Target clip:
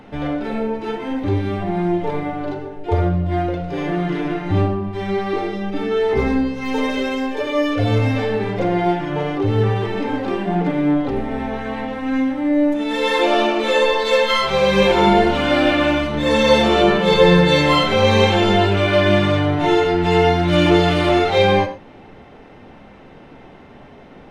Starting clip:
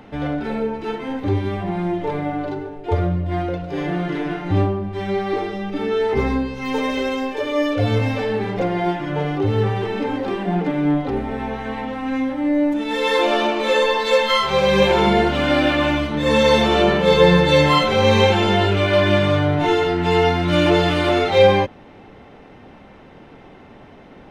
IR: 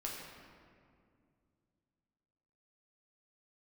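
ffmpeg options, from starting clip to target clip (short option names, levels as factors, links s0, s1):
-filter_complex "[0:a]asplit=2[s0][s1];[1:a]atrim=start_sample=2205,atrim=end_sample=3087,asetrate=24696,aresample=44100[s2];[s1][s2]afir=irnorm=-1:irlink=0,volume=0.668[s3];[s0][s3]amix=inputs=2:normalize=0,volume=0.668"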